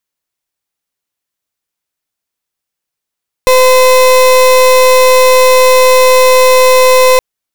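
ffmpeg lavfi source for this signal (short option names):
-f lavfi -i "aevalsrc='0.531*(2*lt(mod(512*t,1),0.32)-1)':d=3.72:s=44100"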